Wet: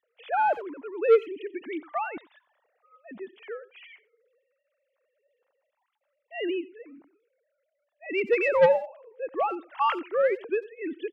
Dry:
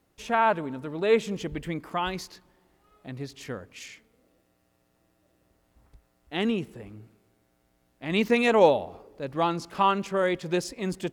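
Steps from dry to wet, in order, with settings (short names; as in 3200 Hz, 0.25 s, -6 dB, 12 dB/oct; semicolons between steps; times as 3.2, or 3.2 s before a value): sine-wave speech; soft clip -13.5 dBFS, distortion -11 dB; speakerphone echo 90 ms, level -19 dB; gain +1.5 dB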